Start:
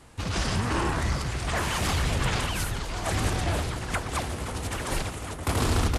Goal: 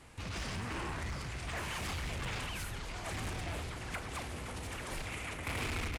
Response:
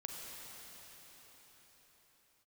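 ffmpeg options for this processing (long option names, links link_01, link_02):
-filter_complex "[0:a]asplit=2[link_01][link_02];[link_02]adelay=37,volume=-12dB[link_03];[link_01][link_03]amix=inputs=2:normalize=0,asoftclip=type=hard:threshold=-22.5dB,alimiter=level_in=5.5dB:limit=-24dB:level=0:latency=1,volume=-5.5dB,asetnsamples=nb_out_samples=441:pad=0,asendcmd='5.07 equalizer g 13.5',equalizer=frequency=2300:width_type=o:width=0.76:gain=5,volume=-5dB"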